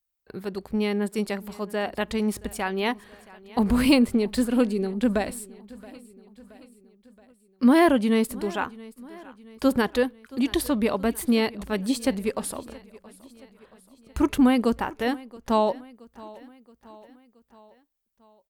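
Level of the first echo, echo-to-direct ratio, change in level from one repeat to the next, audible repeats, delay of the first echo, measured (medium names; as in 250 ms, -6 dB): -21.0 dB, -19.5 dB, -5.0 dB, 3, 674 ms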